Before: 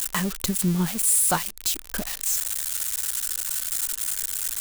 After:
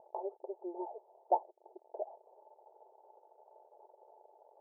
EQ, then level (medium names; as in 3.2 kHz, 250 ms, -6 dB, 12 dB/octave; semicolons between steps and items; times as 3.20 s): brick-wall FIR high-pass 350 Hz; rippled Chebyshev low-pass 900 Hz, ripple 6 dB; +1.5 dB